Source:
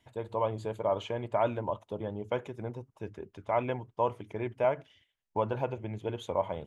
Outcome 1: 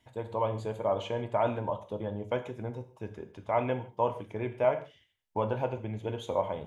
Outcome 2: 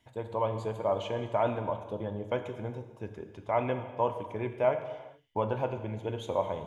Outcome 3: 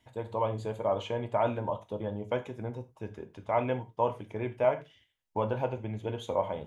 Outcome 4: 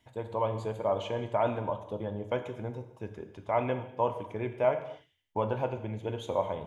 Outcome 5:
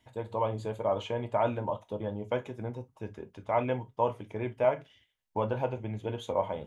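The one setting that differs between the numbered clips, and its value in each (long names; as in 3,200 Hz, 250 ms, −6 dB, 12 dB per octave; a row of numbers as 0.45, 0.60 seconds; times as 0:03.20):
reverb whose tail is shaped and stops, gate: 180, 470, 120, 310, 80 milliseconds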